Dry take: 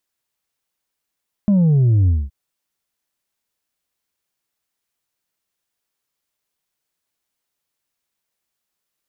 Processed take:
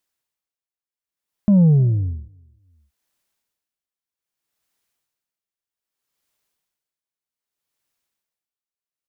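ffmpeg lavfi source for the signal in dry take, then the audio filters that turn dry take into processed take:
-f lavfi -i "aevalsrc='0.266*clip((0.82-t)/0.22,0,1)*tanh(1.41*sin(2*PI*210*0.82/log(65/210)*(exp(log(65/210)*t/0.82)-1)))/tanh(1.41)':d=0.82:s=44100"
-af "dynaudnorm=f=270:g=13:m=4dB,aecho=1:1:306|612:0.106|0.0212,aeval=exprs='val(0)*pow(10,-18*(0.5-0.5*cos(2*PI*0.63*n/s))/20)':c=same"

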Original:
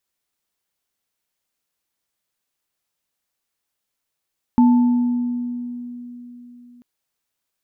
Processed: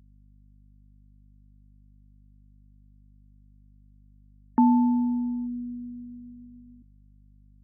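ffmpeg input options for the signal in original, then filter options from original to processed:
-f lavfi -i "aevalsrc='0.355*pow(10,-3*t/3.79)*sin(2*PI*243*t)+0.1*pow(10,-3*t/1.39)*sin(2*PI*881*t)':d=2.24:s=44100"
-af "highpass=300,afftfilt=real='re*gte(hypot(re,im),0.01)':imag='im*gte(hypot(re,im),0.01)':win_size=1024:overlap=0.75,aeval=exprs='val(0)+0.002*(sin(2*PI*50*n/s)+sin(2*PI*2*50*n/s)/2+sin(2*PI*3*50*n/s)/3+sin(2*PI*4*50*n/s)/4+sin(2*PI*5*50*n/s)/5)':c=same"

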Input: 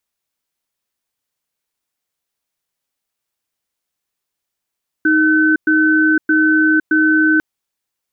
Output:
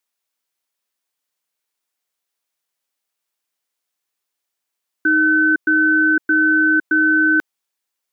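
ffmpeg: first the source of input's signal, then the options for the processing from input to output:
-f lavfi -i "aevalsrc='0.237*(sin(2*PI*312*t)+sin(2*PI*1520*t))*clip(min(mod(t,0.62),0.51-mod(t,0.62))/0.005,0,1)':d=2.35:s=44100"
-af "highpass=f=410:p=1"

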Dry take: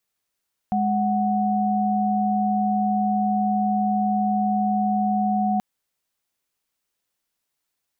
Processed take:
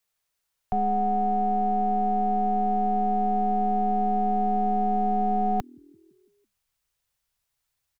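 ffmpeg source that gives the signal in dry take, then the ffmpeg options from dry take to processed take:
-f lavfi -i "aevalsrc='0.0841*(sin(2*PI*207.65*t)+sin(2*PI*739.99*t))':d=4.88:s=44100"
-filter_complex "[0:a]asubboost=boost=4.5:cutoff=130,acrossover=split=190|340[a][b][c];[a]asplit=6[d][e][f][g][h][i];[e]adelay=167,afreqshift=40,volume=-19.5dB[j];[f]adelay=334,afreqshift=80,volume=-23.8dB[k];[g]adelay=501,afreqshift=120,volume=-28.1dB[l];[h]adelay=668,afreqshift=160,volume=-32.4dB[m];[i]adelay=835,afreqshift=200,volume=-36.7dB[n];[d][j][k][l][m][n]amix=inputs=6:normalize=0[o];[b]aeval=exprs='abs(val(0))':c=same[p];[o][p][c]amix=inputs=3:normalize=0"

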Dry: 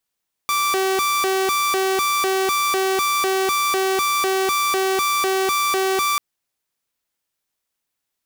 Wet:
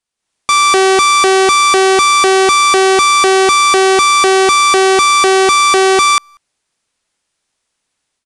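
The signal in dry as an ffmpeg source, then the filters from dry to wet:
-f lavfi -i "aevalsrc='0.178*(2*mod((776*t+394/2*(0.5-abs(mod(2*t,1)-0.5))),1)-1)':d=5.69:s=44100"
-filter_complex "[0:a]dynaudnorm=f=160:g=3:m=11.5dB,aresample=22050,aresample=44100,asplit=2[a][b];[b]adelay=190,highpass=300,lowpass=3.4k,asoftclip=type=hard:threshold=-11.5dB,volume=-30dB[c];[a][c]amix=inputs=2:normalize=0"

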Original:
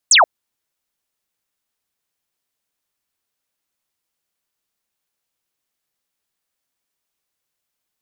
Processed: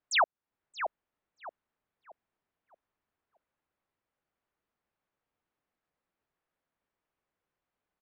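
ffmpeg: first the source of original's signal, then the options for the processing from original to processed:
-f lavfi -i "aevalsrc='0.447*clip(t/0.002,0,1)*clip((0.13-t)/0.002,0,1)*sin(2*PI*8700*0.13/log(570/8700)*(exp(log(570/8700)*t/0.13)-1))':d=0.13:s=44100"
-filter_complex "[0:a]lowpass=1.7k,acompressor=threshold=-32dB:ratio=2,asplit=2[a][b];[b]adelay=626,lowpass=f=980:p=1,volume=-5dB,asplit=2[c][d];[d]adelay=626,lowpass=f=980:p=1,volume=0.4,asplit=2[e][f];[f]adelay=626,lowpass=f=980:p=1,volume=0.4,asplit=2[g][h];[h]adelay=626,lowpass=f=980:p=1,volume=0.4,asplit=2[i][j];[j]adelay=626,lowpass=f=980:p=1,volume=0.4[k];[a][c][e][g][i][k]amix=inputs=6:normalize=0"

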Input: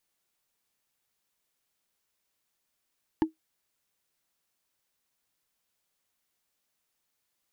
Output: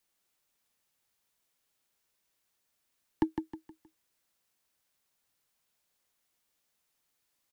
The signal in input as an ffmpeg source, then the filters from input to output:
-f lavfi -i "aevalsrc='0.158*pow(10,-3*t/0.13)*sin(2*PI*318*t)+0.0708*pow(10,-3*t/0.038)*sin(2*PI*876.7*t)+0.0316*pow(10,-3*t/0.017)*sin(2*PI*1718.5*t)+0.0141*pow(10,-3*t/0.009)*sin(2*PI*2840.7*t)+0.00631*pow(10,-3*t/0.006)*sin(2*PI*4242.1*t)':d=0.45:s=44100"
-filter_complex "[0:a]acrossover=split=120|840|1600[a][b][c][d];[a]acrusher=samples=23:mix=1:aa=0.000001[e];[e][b][c][d]amix=inputs=4:normalize=0,aecho=1:1:157|314|471|628:0.447|0.156|0.0547|0.0192"

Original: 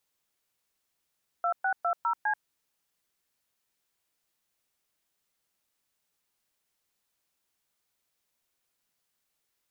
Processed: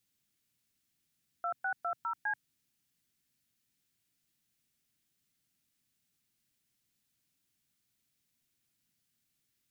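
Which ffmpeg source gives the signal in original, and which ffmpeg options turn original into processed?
-f lavfi -i "aevalsrc='0.0447*clip(min(mod(t,0.203),0.085-mod(t,0.203))/0.002,0,1)*(eq(floor(t/0.203),0)*(sin(2*PI*697*mod(t,0.203))+sin(2*PI*1336*mod(t,0.203)))+eq(floor(t/0.203),1)*(sin(2*PI*770*mod(t,0.203))+sin(2*PI*1477*mod(t,0.203)))+eq(floor(t/0.203),2)*(sin(2*PI*697*mod(t,0.203))+sin(2*PI*1336*mod(t,0.203)))+eq(floor(t/0.203),3)*(sin(2*PI*941*mod(t,0.203))+sin(2*PI*1336*mod(t,0.203)))+eq(floor(t/0.203),4)*(sin(2*PI*852*mod(t,0.203))+sin(2*PI*1633*mod(t,0.203))))':d=1.015:s=44100"
-af "equalizer=f=125:t=o:w=1:g=9,equalizer=f=250:t=o:w=1:g=7,equalizer=f=500:t=o:w=1:g=-8,equalizer=f=1k:t=o:w=1:g=-9"

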